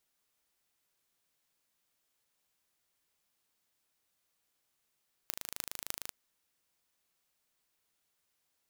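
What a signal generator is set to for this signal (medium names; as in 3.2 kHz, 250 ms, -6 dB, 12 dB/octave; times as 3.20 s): pulse train 26.5 per s, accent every 8, -6.5 dBFS 0.83 s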